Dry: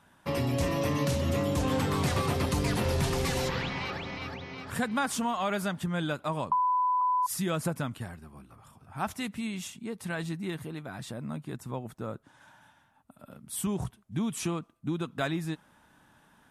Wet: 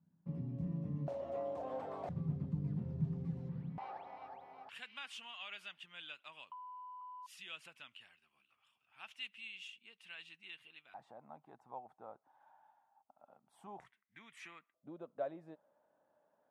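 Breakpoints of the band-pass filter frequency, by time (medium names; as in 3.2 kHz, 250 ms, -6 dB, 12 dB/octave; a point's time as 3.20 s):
band-pass filter, Q 6.3
170 Hz
from 1.08 s 660 Hz
from 2.09 s 160 Hz
from 3.78 s 780 Hz
from 4.69 s 2.8 kHz
from 10.94 s 790 Hz
from 13.80 s 2 kHz
from 14.74 s 580 Hz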